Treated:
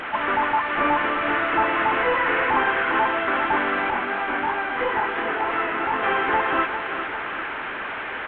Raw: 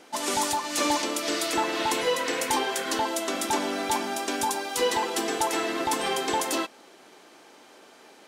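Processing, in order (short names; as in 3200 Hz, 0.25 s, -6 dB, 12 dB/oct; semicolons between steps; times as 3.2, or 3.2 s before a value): delta modulation 16 kbps, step -32.5 dBFS; bell 1500 Hz +13.5 dB 1.5 oct; 3.9–6.03 chorus 2.9 Hz, depth 5.4 ms; feedback echo 0.401 s, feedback 58%, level -10 dB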